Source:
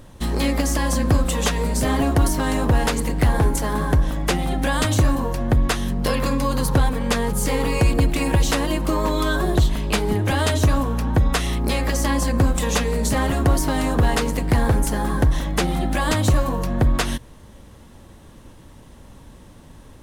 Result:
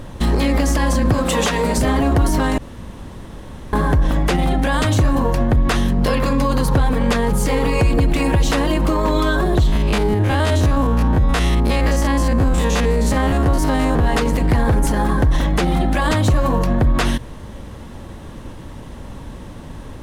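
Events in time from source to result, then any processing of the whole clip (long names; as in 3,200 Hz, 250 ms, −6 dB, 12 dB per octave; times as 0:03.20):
0:01.13–0:01.78: high-pass filter 240 Hz 6 dB per octave
0:02.58–0:03.73: fill with room tone
0:09.67–0:14.06: spectrum averaged block by block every 50 ms
whole clip: high-shelf EQ 5,100 Hz −8.5 dB; boost into a limiter +19 dB; level −8 dB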